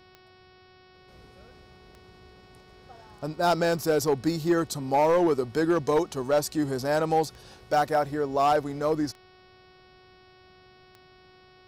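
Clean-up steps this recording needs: clip repair -16 dBFS; de-click; de-hum 370.2 Hz, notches 15

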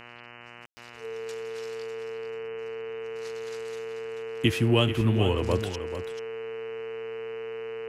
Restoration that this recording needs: de-hum 119.5 Hz, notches 25; band-stop 450 Hz, Q 30; room tone fill 0.66–0.77 s; inverse comb 437 ms -10 dB

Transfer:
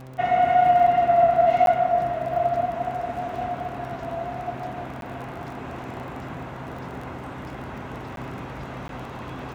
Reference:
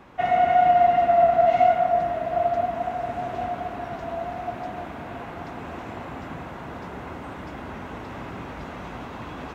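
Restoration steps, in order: de-click; de-hum 129.7 Hz, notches 6; interpolate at 1.66/5.01/8.16/8.88 s, 12 ms

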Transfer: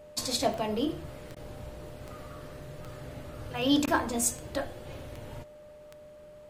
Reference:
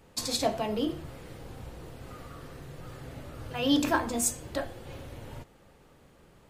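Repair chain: de-click; band-stop 600 Hz, Q 30; interpolate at 1.35/3.86 s, 13 ms

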